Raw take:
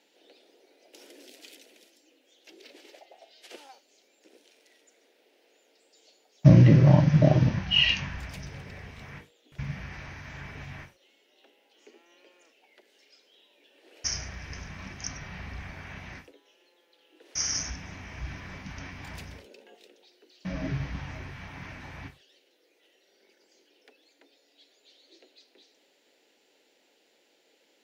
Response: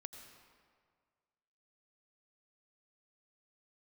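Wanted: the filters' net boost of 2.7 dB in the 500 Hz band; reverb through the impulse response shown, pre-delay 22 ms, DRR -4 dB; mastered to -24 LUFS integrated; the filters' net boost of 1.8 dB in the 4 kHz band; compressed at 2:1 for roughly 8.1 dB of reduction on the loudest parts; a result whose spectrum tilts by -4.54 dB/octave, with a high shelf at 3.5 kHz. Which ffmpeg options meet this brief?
-filter_complex "[0:a]equalizer=f=500:t=o:g=3.5,highshelf=f=3500:g=-3,equalizer=f=4000:t=o:g=5.5,acompressor=threshold=0.0631:ratio=2,asplit=2[s0][s1];[1:a]atrim=start_sample=2205,adelay=22[s2];[s1][s2]afir=irnorm=-1:irlink=0,volume=2.66[s3];[s0][s3]amix=inputs=2:normalize=0,volume=1.26"

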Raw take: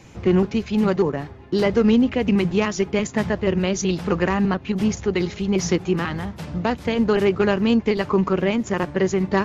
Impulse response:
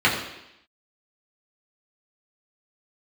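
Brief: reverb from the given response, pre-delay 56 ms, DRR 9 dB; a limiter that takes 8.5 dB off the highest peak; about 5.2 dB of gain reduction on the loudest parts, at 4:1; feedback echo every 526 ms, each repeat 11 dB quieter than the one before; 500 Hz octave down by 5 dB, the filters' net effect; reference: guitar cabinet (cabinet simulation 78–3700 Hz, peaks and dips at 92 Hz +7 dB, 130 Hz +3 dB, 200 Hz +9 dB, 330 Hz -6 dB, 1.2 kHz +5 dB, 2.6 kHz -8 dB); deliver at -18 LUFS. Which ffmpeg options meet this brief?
-filter_complex "[0:a]equalizer=f=500:t=o:g=-5,acompressor=threshold=0.0891:ratio=4,alimiter=limit=0.1:level=0:latency=1,aecho=1:1:526|1052|1578:0.282|0.0789|0.0221,asplit=2[s0][s1];[1:a]atrim=start_sample=2205,adelay=56[s2];[s1][s2]afir=irnorm=-1:irlink=0,volume=0.0355[s3];[s0][s3]amix=inputs=2:normalize=0,highpass=78,equalizer=f=92:t=q:w=4:g=7,equalizer=f=130:t=q:w=4:g=3,equalizer=f=200:t=q:w=4:g=9,equalizer=f=330:t=q:w=4:g=-6,equalizer=f=1200:t=q:w=4:g=5,equalizer=f=2600:t=q:w=4:g=-8,lowpass=f=3700:w=0.5412,lowpass=f=3700:w=1.3066,volume=1.88"

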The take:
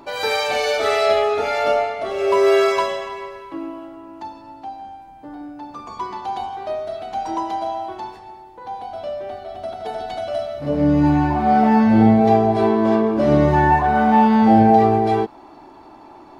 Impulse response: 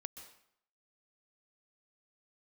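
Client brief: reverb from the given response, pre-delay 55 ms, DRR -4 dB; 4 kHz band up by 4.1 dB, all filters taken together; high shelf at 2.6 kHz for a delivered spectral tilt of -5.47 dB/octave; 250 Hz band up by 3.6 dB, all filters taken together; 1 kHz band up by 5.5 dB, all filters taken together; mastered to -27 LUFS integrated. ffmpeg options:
-filter_complex "[0:a]equalizer=f=250:t=o:g=4,equalizer=f=1000:t=o:g=7.5,highshelf=f=2600:g=-5,equalizer=f=4000:t=o:g=8.5,asplit=2[s0][s1];[1:a]atrim=start_sample=2205,adelay=55[s2];[s1][s2]afir=irnorm=-1:irlink=0,volume=2.51[s3];[s0][s3]amix=inputs=2:normalize=0,volume=0.1"

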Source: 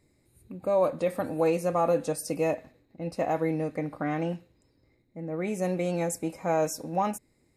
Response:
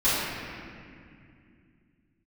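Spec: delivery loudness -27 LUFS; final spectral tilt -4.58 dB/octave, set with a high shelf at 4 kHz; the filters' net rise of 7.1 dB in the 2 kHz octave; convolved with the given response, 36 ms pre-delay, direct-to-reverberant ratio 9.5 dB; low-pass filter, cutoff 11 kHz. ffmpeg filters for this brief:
-filter_complex "[0:a]lowpass=11000,equalizer=f=2000:t=o:g=8,highshelf=f=4000:g=3,asplit=2[s0][s1];[1:a]atrim=start_sample=2205,adelay=36[s2];[s1][s2]afir=irnorm=-1:irlink=0,volume=0.0531[s3];[s0][s3]amix=inputs=2:normalize=0,volume=1.12"

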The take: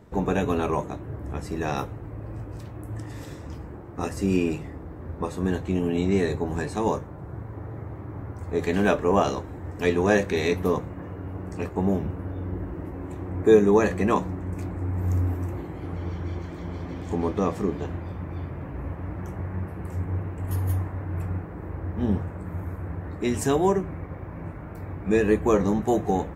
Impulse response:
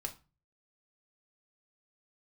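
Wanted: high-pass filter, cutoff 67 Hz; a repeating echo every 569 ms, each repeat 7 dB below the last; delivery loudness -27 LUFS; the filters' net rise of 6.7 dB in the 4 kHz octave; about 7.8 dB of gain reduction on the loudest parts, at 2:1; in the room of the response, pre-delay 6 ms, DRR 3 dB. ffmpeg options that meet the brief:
-filter_complex "[0:a]highpass=67,equalizer=f=4000:t=o:g=8,acompressor=threshold=0.0562:ratio=2,aecho=1:1:569|1138|1707|2276|2845:0.447|0.201|0.0905|0.0407|0.0183,asplit=2[s0][s1];[1:a]atrim=start_sample=2205,adelay=6[s2];[s1][s2]afir=irnorm=-1:irlink=0,volume=0.75[s3];[s0][s3]amix=inputs=2:normalize=0,volume=1.19"

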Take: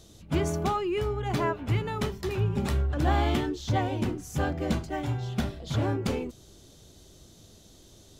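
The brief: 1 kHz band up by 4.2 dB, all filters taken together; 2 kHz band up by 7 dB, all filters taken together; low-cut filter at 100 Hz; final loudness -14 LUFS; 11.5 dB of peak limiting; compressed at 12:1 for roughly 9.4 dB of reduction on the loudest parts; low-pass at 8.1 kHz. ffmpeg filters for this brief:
-af "highpass=100,lowpass=8100,equalizer=f=1000:t=o:g=4,equalizer=f=2000:t=o:g=7.5,acompressor=threshold=0.0355:ratio=12,volume=16.8,alimiter=limit=0.531:level=0:latency=1"

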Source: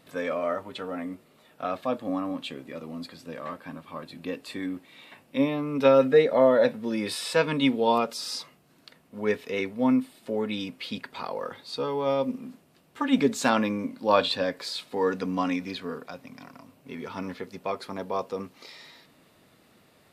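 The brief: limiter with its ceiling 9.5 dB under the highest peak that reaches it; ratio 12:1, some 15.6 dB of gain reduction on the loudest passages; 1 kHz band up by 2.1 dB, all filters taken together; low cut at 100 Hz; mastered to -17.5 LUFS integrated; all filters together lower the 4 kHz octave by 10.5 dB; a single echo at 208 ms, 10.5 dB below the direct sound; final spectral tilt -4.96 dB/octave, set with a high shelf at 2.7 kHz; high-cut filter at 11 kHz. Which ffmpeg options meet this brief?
-af "highpass=100,lowpass=11000,equalizer=f=1000:t=o:g=4,highshelf=f=2700:g=-7.5,equalizer=f=4000:t=o:g=-7,acompressor=threshold=0.0355:ratio=12,alimiter=level_in=1.26:limit=0.0631:level=0:latency=1,volume=0.794,aecho=1:1:208:0.299,volume=9.44"

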